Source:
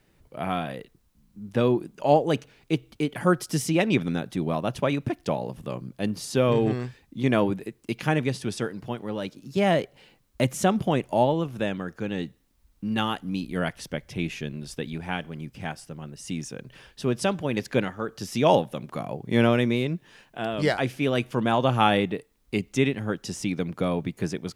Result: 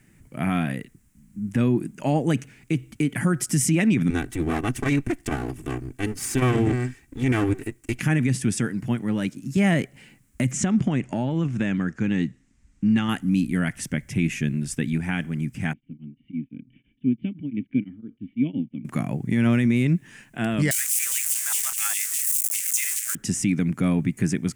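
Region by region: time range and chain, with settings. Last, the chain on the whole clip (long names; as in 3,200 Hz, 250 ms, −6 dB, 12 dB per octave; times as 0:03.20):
0:04.10–0:08.00: lower of the sound and its delayed copy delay 2.6 ms + saturating transformer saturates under 200 Hz
0:10.51–0:13.09: downward compressor, threshold −24 dBFS + low-pass filter 7,200 Hz 24 dB per octave
0:15.73–0:18.85: formant resonators in series i + tremolo along a rectified sine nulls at 5.9 Hz
0:20.71–0:23.15: spike at every zero crossing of −13 dBFS + bass and treble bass −13 dB, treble +12 dB + auto-filter high-pass saw down 4.9 Hz 960–3,300 Hz
whole clip: graphic EQ with 10 bands 125 Hz +6 dB, 250 Hz +8 dB, 500 Hz −8 dB, 1,000 Hz −5 dB, 2,000 Hz +8 dB, 4,000 Hz −10 dB, 8,000 Hz +11 dB; brickwall limiter −15.5 dBFS; level +3 dB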